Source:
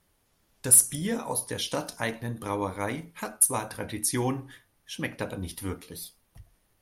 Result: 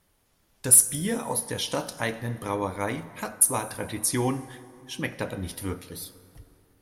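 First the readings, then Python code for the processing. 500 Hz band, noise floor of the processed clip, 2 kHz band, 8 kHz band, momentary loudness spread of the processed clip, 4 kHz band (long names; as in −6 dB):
+2.0 dB, −68 dBFS, +1.5 dB, +1.5 dB, 20 LU, +1.5 dB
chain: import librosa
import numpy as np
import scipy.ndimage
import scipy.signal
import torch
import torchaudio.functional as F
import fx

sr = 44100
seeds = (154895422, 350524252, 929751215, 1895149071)

y = fx.rev_plate(x, sr, seeds[0], rt60_s=3.0, hf_ratio=0.55, predelay_ms=0, drr_db=14.0)
y = y * 10.0 ** (1.5 / 20.0)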